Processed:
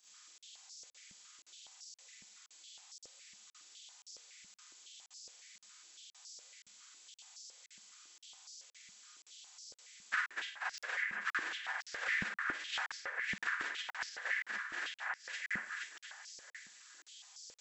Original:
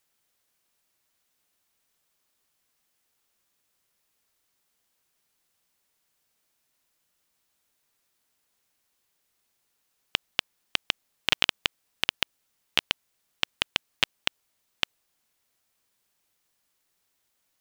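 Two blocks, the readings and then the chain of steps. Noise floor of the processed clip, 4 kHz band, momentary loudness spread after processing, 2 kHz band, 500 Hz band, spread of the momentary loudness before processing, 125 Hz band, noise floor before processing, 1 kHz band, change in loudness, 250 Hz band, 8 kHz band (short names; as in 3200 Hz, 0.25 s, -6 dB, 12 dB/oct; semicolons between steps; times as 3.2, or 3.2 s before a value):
under -85 dBFS, -16.5 dB, 19 LU, -2.0 dB, -11.0 dB, 7 LU, -10.5 dB, -75 dBFS, -3.5 dB, -10.5 dB, -8.0 dB, -3.0 dB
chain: inharmonic rescaling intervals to 77%; tilt +4 dB/oct; echo with dull and thin repeats by turns 0.236 s, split 2300 Hz, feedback 60%, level -5 dB; Schroeder reverb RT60 0.35 s, combs from 31 ms, DRR -8.5 dB; limiter -11 dBFS, peak gain reduction 7.5 dB; compressor 8:1, threshold -36 dBFS, peak gain reduction 18.5 dB; crackling interface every 0.52 s, samples 2048, zero, from 0.38; stepped high-pass 7.2 Hz 200–5100 Hz; gain -3 dB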